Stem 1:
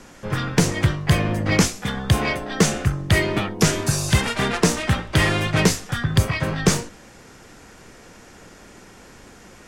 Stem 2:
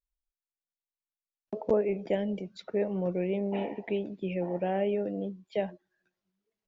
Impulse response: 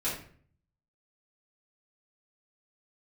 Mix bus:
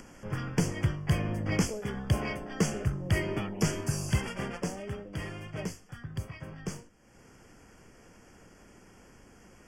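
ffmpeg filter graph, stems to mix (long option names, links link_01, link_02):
-filter_complex "[0:a]volume=-13dB,afade=type=out:start_time=4.1:duration=0.73:silence=0.334965[link_01];[1:a]volume=-15.5dB[link_02];[link_01][link_02]amix=inputs=2:normalize=0,lowshelf=frequency=430:gain=4.5,acompressor=mode=upward:threshold=-44dB:ratio=2.5,asuperstop=centerf=3900:order=12:qfactor=3.5"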